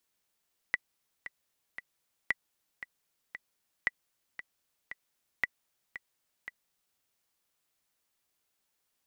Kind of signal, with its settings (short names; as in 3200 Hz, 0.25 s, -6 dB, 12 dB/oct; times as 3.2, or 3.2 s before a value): metronome 115 bpm, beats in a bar 3, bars 4, 1970 Hz, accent 13.5 dB -13.5 dBFS